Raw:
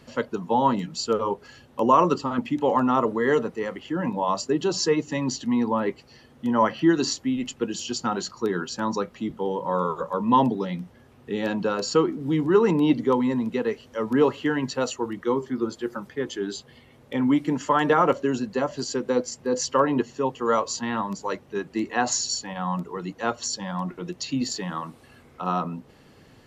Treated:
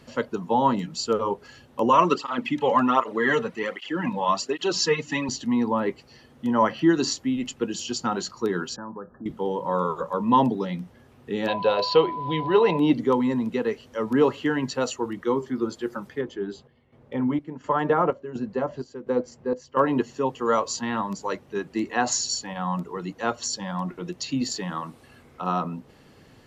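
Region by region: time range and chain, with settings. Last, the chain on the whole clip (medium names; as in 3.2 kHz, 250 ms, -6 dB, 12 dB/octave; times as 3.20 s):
1.89–5.29 s: peaking EQ 2.5 kHz +9.5 dB 2.4 oct + cancelling through-zero flanger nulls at 1.3 Hz, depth 3.3 ms
8.76–9.26 s: compression 2.5:1, threshold -38 dBFS + brick-wall FIR low-pass 1.8 kHz + tape noise reduction on one side only decoder only
11.47–12.78 s: FFT filter 130 Hz 0 dB, 260 Hz -11 dB, 390 Hz -2 dB, 640 Hz +11 dB, 1.3 kHz -5 dB, 2.1 kHz +5 dB, 4 kHz +10 dB, 8.3 kHz -28 dB + whistle 1 kHz -29 dBFS
16.21–19.77 s: low-pass 1.1 kHz 6 dB/octave + band-stop 280 Hz, Q 8.8 + square tremolo 1.4 Hz, depth 65%, duty 65%
whole clip: none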